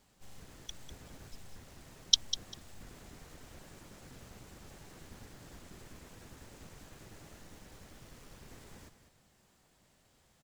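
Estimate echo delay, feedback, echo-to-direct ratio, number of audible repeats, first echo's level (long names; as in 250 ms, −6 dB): 198 ms, 18%, −11.0 dB, 2, −11.0 dB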